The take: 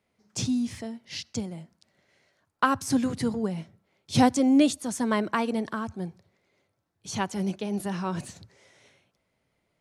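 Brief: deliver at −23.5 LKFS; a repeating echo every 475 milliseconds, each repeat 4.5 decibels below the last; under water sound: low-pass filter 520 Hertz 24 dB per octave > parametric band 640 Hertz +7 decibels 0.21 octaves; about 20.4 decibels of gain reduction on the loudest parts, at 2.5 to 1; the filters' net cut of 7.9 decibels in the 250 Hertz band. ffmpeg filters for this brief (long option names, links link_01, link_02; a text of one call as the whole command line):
ffmpeg -i in.wav -af "equalizer=frequency=250:width_type=o:gain=-9,acompressor=threshold=-50dB:ratio=2.5,lowpass=frequency=520:width=0.5412,lowpass=frequency=520:width=1.3066,equalizer=frequency=640:width_type=o:width=0.21:gain=7,aecho=1:1:475|950|1425|1900|2375|2850|3325|3800|4275:0.596|0.357|0.214|0.129|0.0772|0.0463|0.0278|0.0167|0.01,volume=26.5dB" out.wav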